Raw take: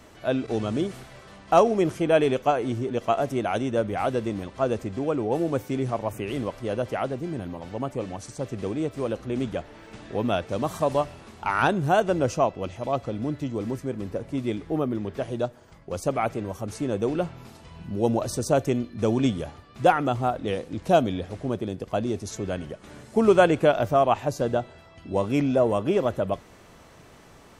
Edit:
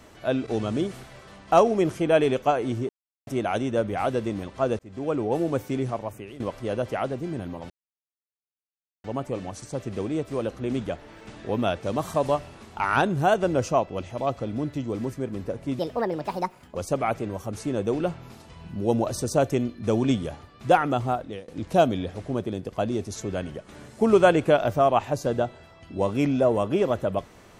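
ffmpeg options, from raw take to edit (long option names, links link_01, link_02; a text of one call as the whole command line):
ffmpeg -i in.wav -filter_complex "[0:a]asplit=9[link_01][link_02][link_03][link_04][link_05][link_06][link_07][link_08][link_09];[link_01]atrim=end=2.89,asetpts=PTS-STARTPTS,afade=type=out:start_time=2.886:duration=0.004:curve=hsin[link_10];[link_02]atrim=start=2.89:end=3.27,asetpts=PTS-STARTPTS,volume=0[link_11];[link_03]atrim=start=3.27:end=4.79,asetpts=PTS-STARTPTS,afade=type=in:duration=0.004:curve=hsin,afade=type=out:start_time=1.516:duration=0.004:curve=hsin[link_12];[link_04]atrim=start=4.79:end=6.4,asetpts=PTS-STARTPTS,afade=type=in:duration=0.34,afade=type=out:start_time=1:duration=0.61:silence=0.158489[link_13];[link_05]atrim=start=6.4:end=7.7,asetpts=PTS-STARTPTS,afade=type=in:duration=0.004:curve=hsin:silence=0.158489,afade=type=out:start_time=1.296:duration=0.004:curve=hsin,apad=pad_dur=1.34[link_14];[link_06]atrim=start=7.7:end=14.454,asetpts=PTS-STARTPTS,afade=type=in:duration=0.004:curve=hsin[link_15];[link_07]atrim=start=14.45:end=15.9,asetpts=PTS-STARTPTS,asetrate=66591,aresample=44100[link_16];[link_08]atrim=start=15.896:end=20.63,asetpts=PTS-STARTPTS,afade=type=out:start_time=4.324:duration=0.41:silence=0.0794328[link_17];[link_09]atrim=start=20.63,asetpts=PTS-STARTPTS,afade=type=in:duration=0.004:curve=hsin:silence=0.0794328[link_18];[link_10][link_11][link_12][link_13][link_14][link_15]concat=n=6:v=0:a=1[link_19];[link_19][link_16]acrossfade=duration=0.004:curve1=hsin:curve2=hsin[link_20];[link_17][link_18]concat=n=2:v=0:a=1[link_21];[link_20][link_21]acrossfade=duration=0.004:curve1=hsin:curve2=hsin" out.wav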